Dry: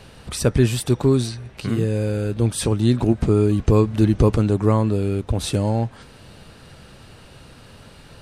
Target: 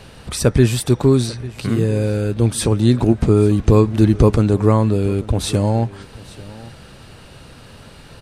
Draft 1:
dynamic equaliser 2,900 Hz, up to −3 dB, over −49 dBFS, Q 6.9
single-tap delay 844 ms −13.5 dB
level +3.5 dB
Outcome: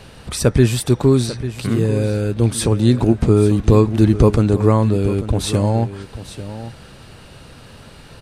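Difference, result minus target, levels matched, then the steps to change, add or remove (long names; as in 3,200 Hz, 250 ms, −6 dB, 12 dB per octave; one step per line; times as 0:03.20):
echo-to-direct +6.5 dB
change: single-tap delay 844 ms −20 dB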